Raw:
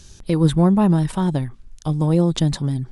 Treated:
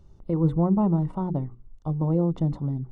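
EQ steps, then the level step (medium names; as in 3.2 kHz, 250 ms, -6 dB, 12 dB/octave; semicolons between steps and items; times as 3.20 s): Savitzky-Golay filter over 65 samples; hum notches 60/120/180/240/300/360/420/480 Hz; -5.5 dB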